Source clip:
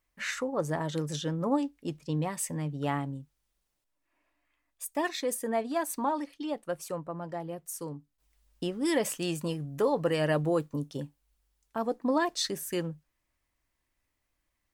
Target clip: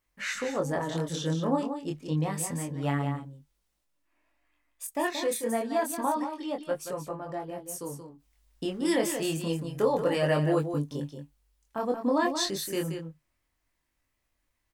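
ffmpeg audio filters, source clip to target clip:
-af "aecho=1:1:178:0.398,flanger=delay=20:depth=6:speed=0.28,volume=1.58"

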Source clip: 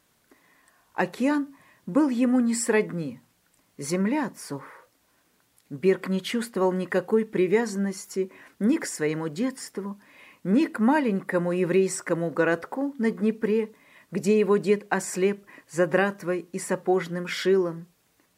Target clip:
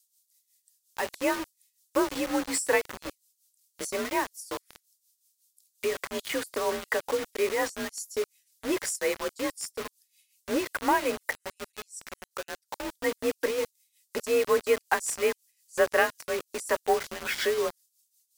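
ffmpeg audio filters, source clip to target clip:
-filter_complex "[0:a]asettb=1/sr,asplit=3[s0][s1][s2];[s0]atrim=end=11.324[s3];[s1]atrim=start=11.32:end=12.8,asetpts=PTS-STARTPTS,afade=t=in:d=0.004:c=qsin,afade=t=out:st=1.476:d=0.004:c=qsin,acompressor=threshold=0.0178:ratio=8[s4];[s2]atrim=start=12.796[s5];[s3][s4]acrossfade=d=0.004:c1=hsin:c2=qsin[s6];[s6][s5]acrossfade=d=0.004:c1=qsin:c2=hsin,highpass=470,tremolo=f=5.5:d=0.71,afreqshift=42,asplit=2[s7][s8];[s8]asoftclip=type=tanh:threshold=0.0422,volume=0.562[s9];[s7][s9]amix=inputs=2:normalize=0,acontrast=53,acrossover=split=4700[s10][s11];[s10]acrusher=bits=4:mix=0:aa=0.000001[s12];[s12][s11]amix=inputs=2:normalize=0,volume=0.562"

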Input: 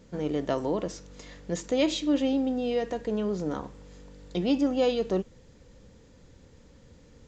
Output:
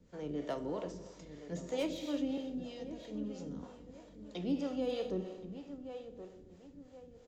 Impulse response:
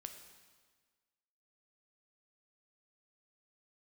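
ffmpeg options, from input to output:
-filter_complex "[0:a]asettb=1/sr,asplit=3[s0][s1][s2];[s0]atrim=end=2.374[s3];[s1]atrim=start=2.37:end=3.63,asetpts=PTS-STARTPTS,afade=t=in:d=0.004:c=qsin,afade=t=out:st=1.256:d=0.004:c=qsin,acrossover=split=250|3000[s4][s5][s6];[s5]acompressor=threshold=0.01:ratio=6[s7];[s4][s7][s6]amix=inputs=3:normalize=0[s8];[s2]atrim=start=3.626[s9];[s3][s8]acrossfade=d=0.004:c1=hsin:c2=qsin[s10];[s10][s9]acrossfade=d=0.004:c1=qsin:c2=hsin,acrossover=split=300|750[s11][s12][s13];[s13]asoftclip=type=hard:threshold=0.0376[s14];[s11][s12][s14]amix=inputs=3:normalize=0,asplit=2[s15][s16];[s16]adelay=1074,lowpass=f=1900:p=1,volume=0.282,asplit=2[s17][s18];[s18]adelay=1074,lowpass=f=1900:p=1,volume=0.38,asplit=2[s19][s20];[s20]adelay=1074,lowpass=f=1900:p=1,volume=0.38,asplit=2[s21][s22];[s22]adelay=1074,lowpass=f=1900:p=1,volume=0.38[s23];[s15][s17][s19][s21][s23]amix=inputs=5:normalize=0[s24];[1:a]atrim=start_sample=2205[s25];[s24][s25]afir=irnorm=-1:irlink=0,acrossover=split=410[s26][s27];[s26]aeval=exprs='val(0)*(1-0.7/2+0.7/2*cos(2*PI*3.1*n/s))':c=same[s28];[s27]aeval=exprs='val(0)*(1-0.7/2-0.7/2*cos(2*PI*3.1*n/s))':c=same[s29];[s28][s29]amix=inputs=2:normalize=0,volume=0.794"

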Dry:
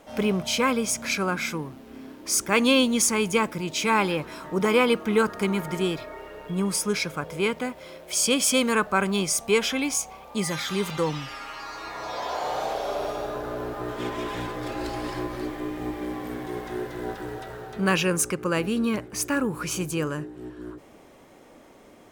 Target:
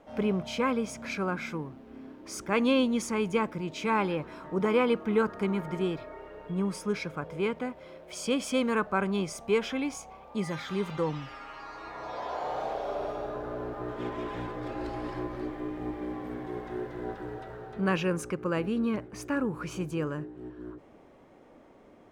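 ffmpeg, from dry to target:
-af "lowpass=f=1500:p=1,volume=0.668"

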